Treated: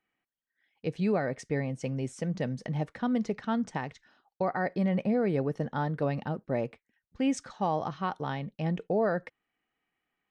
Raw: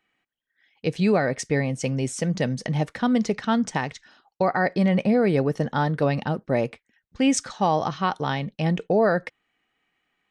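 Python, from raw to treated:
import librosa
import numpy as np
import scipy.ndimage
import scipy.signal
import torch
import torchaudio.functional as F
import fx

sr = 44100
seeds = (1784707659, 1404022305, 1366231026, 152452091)

y = fx.high_shelf(x, sr, hz=2800.0, db=-9.0)
y = y * librosa.db_to_amplitude(-7.0)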